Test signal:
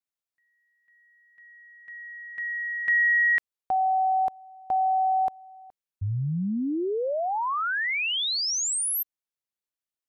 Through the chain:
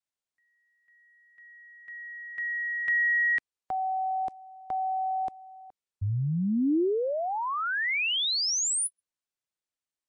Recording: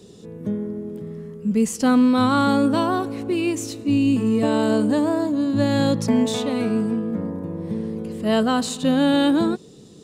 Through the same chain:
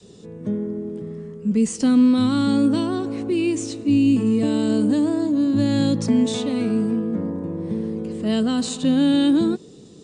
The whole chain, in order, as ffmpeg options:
ffmpeg -i in.wav -filter_complex "[0:a]adynamicequalizer=threshold=0.02:dfrequency=320:dqfactor=1.5:tfrequency=320:tqfactor=1.5:attack=5:release=100:ratio=0.417:range=2:mode=boostabove:tftype=bell,acrossover=split=380|2200[link_01][link_02][link_03];[link_02]acompressor=threshold=-28dB:ratio=10:attack=0.84:release=139:knee=2.83:detection=peak[link_04];[link_01][link_04][link_03]amix=inputs=3:normalize=0" -ar 22050 -c:a libmp3lame -b:a 64k out.mp3

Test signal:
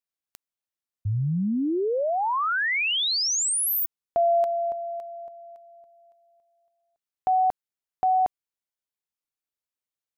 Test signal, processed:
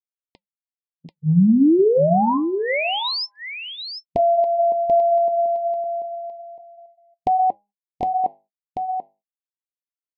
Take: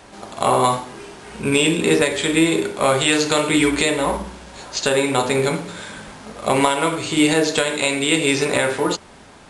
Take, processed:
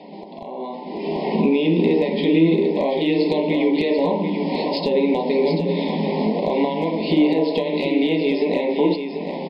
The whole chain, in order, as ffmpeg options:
ffmpeg -i in.wav -filter_complex "[0:a]bandreject=frequency=203.6:width_type=h:width=4,bandreject=frequency=407.2:width_type=h:width=4,bandreject=frequency=610.8:width_type=h:width=4,bandreject=frequency=814.4:width_type=h:width=4,bandreject=frequency=1018:width_type=h:width=4,bandreject=frequency=1221.6:width_type=h:width=4,bandreject=frequency=1425.2:width_type=h:width=4,bandreject=frequency=1628.8:width_type=h:width=4,bandreject=frequency=1832.4:width_type=h:width=4,bandreject=frequency=2036:width_type=h:width=4,bandreject=frequency=2239.6:width_type=h:width=4,bandreject=frequency=2443.2:width_type=h:width=4,bandreject=frequency=2646.8:width_type=h:width=4,bandreject=frequency=2850.4:width_type=h:width=4,afftfilt=real='re*between(b*sr/4096,160,5300)':imag='im*between(b*sr/4096,160,5300)':win_size=4096:overlap=0.75,asplit=2[link_01][link_02];[link_02]alimiter=limit=-14.5dB:level=0:latency=1:release=307,volume=-1dB[link_03];[link_01][link_03]amix=inputs=2:normalize=0,acompressor=threshold=-31dB:ratio=6:attack=2.3:release=341:knee=6:detection=rms,anlmdn=0.000398,volume=24.5dB,asoftclip=hard,volume=-24.5dB,flanger=delay=1.3:depth=8.6:regen=-80:speed=0.29:shape=sinusoidal,agate=range=-37dB:threshold=-58dB:ratio=3:release=140:detection=rms,asuperstop=centerf=1400:order=12:qfactor=1.6,tiltshelf=frequency=890:gain=7,asplit=2[link_04][link_05];[link_05]aecho=0:1:738:0.422[link_06];[link_04][link_06]amix=inputs=2:normalize=0,dynaudnorm=framelen=280:gausssize=7:maxgain=14.5dB,volume=2.5dB" out.wav

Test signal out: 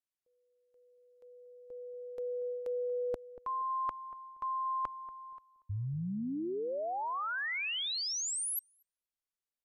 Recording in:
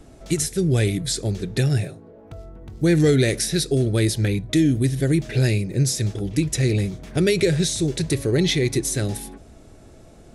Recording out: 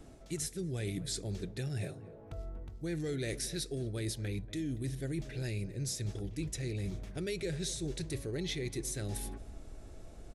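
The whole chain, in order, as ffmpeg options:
ffmpeg -i in.wav -filter_complex "[0:a]asubboost=boost=3:cutoff=71,areverse,acompressor=threshold=-28dB:ratio=6,areverse,asplit=2[link_01][link_02];[link_02]adelay=236,lowpass=frequency=1100:poles=1,volume=-15.5dB,asplit=2[link_03][link_04];[link_04]adelay=236,lowpass=frequency=1100:poles=1,volume=0.27,asplit=2[link_05][link_06];[link_06]adelay=236,lowpass=frequency=1100:poles=1,volume=0.27[link_07];[link_01][link_03][link_05][link_07]amix=inputs=4:normalize=0,aresample=32000,aresample=44100,volume=-6.5dB" out.wav

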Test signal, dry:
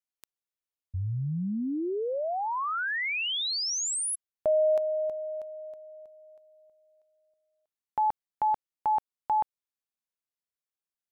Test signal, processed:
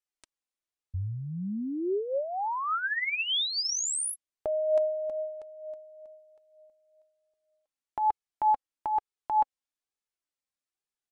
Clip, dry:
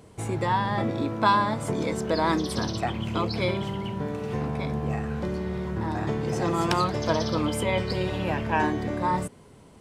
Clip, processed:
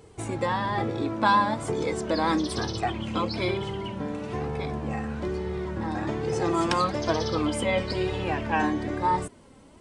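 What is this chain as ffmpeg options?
ffmpeg -i in.wav -af "flanger=delay=2.3:depth=1.5:regen=25:speed=1.1:shape=sinusoidal,aresample=22050,aresample=44100,volume=3.5dB" out.wav

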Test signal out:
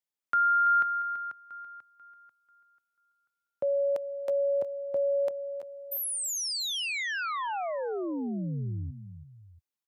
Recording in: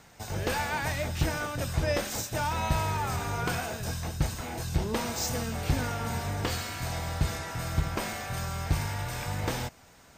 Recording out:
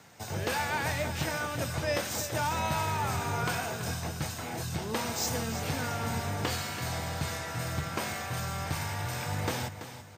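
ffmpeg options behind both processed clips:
ffmpeg -i in.wav -filter_complex "[0:a]highpass=frequency=85:width=0.5412,highpass=frequency=85:width=1.3066,acrossover=split=610|4500[link_01][link_02][link_03];[link_01]alimiter=level_in=0.5dB:limit=-24dB:level=0:latency=1:release=354,volume=-0.5dB[link_04];[link_04][link_02][link_03]amix=inputs=3:normalize=0,aecho=1:1:333|684:0.266|0.119" out.wav

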